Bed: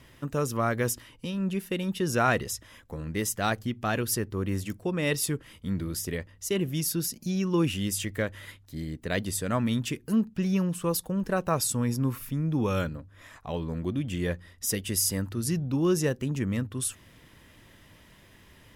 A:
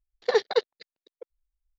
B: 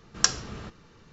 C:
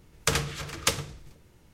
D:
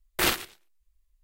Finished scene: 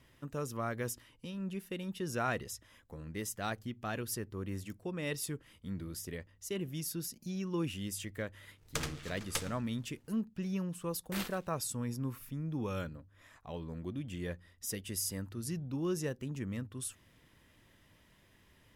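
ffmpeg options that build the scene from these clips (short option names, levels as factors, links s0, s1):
-filter_complex "[0:a]volume=0.316[s0];[3:a]aeval=exprs='if(lt(val(0),0),0.447*val(0),val(0))':c=same,atrim=end=1.73,asetpts=PTS-STARTPTS,volume=0.335,afade=t=in:d=0.004:c=hsin,afade=t=out:st=1.726:d=0.004:c=hsin,adelay=8480[s1];[4:a]atrim=end=1.23,asetpts=PTS-STARTPTS,volume=0.15,afade=t=in:d=0.004:c=hsin,afade=t=out:st=1.226:d=0.004:c=hsin,adelay=10930[s2];[s0][s1][s2]amix=inputs=3:normalize=0"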